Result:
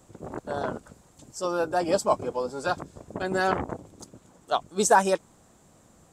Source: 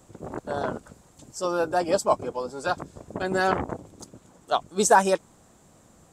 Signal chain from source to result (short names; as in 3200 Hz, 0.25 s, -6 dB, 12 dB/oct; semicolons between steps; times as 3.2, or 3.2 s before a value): 1.82–2.8 harmonic-percussive split harmonic +4 dB; gain -1.5 dB